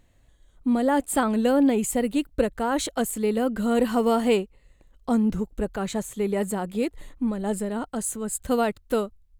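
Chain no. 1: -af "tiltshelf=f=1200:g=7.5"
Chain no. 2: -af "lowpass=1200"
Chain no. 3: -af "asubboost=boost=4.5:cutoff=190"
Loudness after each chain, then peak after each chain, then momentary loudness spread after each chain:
-19.5 LUFS, -25.5 LUFS, -23.5 LUFS; -4.0 dBFS, -9.0 dBFS, -7.0 dBFS; 9 LU, 9 LU, 7 LU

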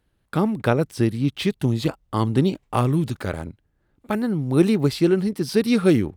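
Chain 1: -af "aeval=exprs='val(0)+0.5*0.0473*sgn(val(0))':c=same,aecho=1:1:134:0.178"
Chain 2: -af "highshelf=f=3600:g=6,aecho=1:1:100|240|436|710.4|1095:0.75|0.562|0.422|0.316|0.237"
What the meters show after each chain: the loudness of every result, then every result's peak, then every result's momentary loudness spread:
-20.5 LUFS, -19.0 LUFS; -4.0 dBFS, -3.0 dBFS; 9 LU, 9 LU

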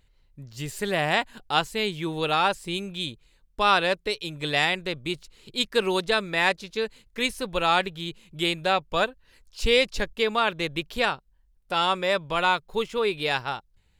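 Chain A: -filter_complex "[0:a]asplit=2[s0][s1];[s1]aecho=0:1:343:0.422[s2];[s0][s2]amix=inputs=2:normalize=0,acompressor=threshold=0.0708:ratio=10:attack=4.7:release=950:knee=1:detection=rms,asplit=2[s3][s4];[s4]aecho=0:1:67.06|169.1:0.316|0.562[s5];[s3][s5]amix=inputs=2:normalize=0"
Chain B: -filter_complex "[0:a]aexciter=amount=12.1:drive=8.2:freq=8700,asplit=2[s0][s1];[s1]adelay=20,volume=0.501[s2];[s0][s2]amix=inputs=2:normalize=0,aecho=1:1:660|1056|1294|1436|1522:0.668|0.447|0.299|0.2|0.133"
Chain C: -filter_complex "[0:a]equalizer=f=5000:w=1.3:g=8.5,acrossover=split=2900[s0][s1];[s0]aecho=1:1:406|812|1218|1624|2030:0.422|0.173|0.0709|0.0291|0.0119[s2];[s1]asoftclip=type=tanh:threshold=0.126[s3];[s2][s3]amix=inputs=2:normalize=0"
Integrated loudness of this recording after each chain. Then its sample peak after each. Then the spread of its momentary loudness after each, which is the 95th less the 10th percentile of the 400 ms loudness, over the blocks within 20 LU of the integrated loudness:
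-31.0 LUFS, -21.0 LUFS, -24.0 LUFS; -16.0 dBFS, -1.0 dBFS, -6.0 dBFS; 5 LU, 4 LU, 9 LU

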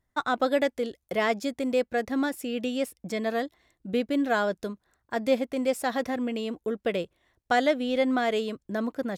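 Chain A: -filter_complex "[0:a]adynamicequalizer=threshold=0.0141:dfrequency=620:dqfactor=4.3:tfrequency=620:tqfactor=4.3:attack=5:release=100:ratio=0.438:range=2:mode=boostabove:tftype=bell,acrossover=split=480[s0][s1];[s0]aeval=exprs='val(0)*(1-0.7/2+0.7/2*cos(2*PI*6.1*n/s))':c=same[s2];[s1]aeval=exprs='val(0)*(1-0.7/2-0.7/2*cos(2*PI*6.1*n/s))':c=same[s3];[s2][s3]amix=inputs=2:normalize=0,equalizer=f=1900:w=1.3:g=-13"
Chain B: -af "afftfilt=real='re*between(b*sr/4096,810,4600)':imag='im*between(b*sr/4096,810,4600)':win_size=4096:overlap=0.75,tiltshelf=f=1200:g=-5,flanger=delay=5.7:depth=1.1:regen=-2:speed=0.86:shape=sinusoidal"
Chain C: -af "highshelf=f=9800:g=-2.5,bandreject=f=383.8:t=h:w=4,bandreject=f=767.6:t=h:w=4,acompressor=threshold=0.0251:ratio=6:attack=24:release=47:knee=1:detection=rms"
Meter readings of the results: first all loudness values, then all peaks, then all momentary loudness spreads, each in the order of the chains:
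-32.0 LUFS, -37.0 LUFS, -34.5 LUFS; -16.0 dBFS, -16.5 dBFS, -18.0 dBFS; 8 LU, 11 LU, 6 LU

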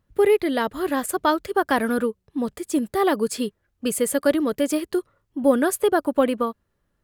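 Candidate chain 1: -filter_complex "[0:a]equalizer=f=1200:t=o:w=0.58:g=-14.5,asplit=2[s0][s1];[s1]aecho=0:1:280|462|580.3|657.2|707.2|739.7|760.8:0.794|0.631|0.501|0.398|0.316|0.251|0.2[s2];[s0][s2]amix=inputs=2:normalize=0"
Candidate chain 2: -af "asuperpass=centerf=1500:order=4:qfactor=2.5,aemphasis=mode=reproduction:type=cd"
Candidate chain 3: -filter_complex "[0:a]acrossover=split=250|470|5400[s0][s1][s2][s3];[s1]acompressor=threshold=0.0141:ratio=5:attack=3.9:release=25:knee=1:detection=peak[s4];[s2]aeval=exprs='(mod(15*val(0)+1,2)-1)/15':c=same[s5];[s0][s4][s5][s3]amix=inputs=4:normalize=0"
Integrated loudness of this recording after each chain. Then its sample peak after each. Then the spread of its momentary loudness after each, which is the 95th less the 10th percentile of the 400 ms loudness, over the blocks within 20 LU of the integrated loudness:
-20.0 LUFS, -34.5 LUFS, -27.5 LUFS; -5.0 dBFS, -16.0 dBFS, -13.0 dBFS; 4 LU, 20 LU, 6 LU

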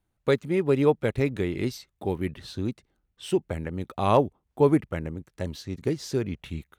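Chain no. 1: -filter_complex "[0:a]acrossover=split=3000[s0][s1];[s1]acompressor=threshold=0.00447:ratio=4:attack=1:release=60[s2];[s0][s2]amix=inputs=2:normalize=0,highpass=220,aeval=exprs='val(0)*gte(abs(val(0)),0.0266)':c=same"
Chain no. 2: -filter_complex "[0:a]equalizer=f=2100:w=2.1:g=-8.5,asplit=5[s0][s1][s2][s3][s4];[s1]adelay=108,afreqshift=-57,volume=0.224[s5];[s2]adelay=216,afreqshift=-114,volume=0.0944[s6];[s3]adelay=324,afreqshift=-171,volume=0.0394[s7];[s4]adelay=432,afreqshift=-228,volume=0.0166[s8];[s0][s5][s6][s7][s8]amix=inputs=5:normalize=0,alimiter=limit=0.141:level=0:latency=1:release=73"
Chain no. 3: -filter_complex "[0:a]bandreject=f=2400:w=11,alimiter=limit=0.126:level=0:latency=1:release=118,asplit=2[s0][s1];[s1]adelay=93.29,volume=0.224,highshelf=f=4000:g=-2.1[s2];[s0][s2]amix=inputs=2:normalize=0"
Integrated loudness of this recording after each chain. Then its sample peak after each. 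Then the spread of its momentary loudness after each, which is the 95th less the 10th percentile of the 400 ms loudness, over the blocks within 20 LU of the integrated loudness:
-28.0 LUFS, -30.5 LUFS, -31.5 LUFS; -8.0 dBFS, -17.0 dBFS, -17.0 dBFS; 15 LU, 8 LU, 8 LU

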